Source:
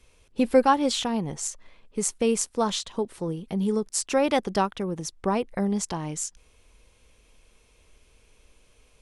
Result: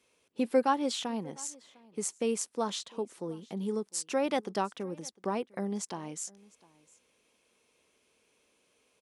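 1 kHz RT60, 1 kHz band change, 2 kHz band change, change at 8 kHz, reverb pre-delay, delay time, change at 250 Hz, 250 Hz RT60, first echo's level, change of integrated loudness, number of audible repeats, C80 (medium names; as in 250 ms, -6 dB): no reverb, -7.0 dB, -7.5 dB, -7.5 dB, no reverb, 703 ms, -8.0 dB, no reverb, -24.0 dB, -7.5 dB, 1, no reverb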